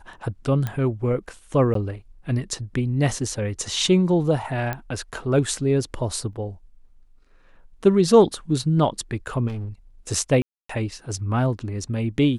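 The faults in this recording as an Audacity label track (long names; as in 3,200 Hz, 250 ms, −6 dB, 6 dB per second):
0.670000	0.670000	click −14 dBFS
1.740000	1.750000	drop-out
4.730000	4.730000	click −14 dBFS
6.330000	6.330000	drop-out 2 ms
9.470000	9.680000	clipping −27 dBFS
10.420000	10.690000	drop-out 274 ms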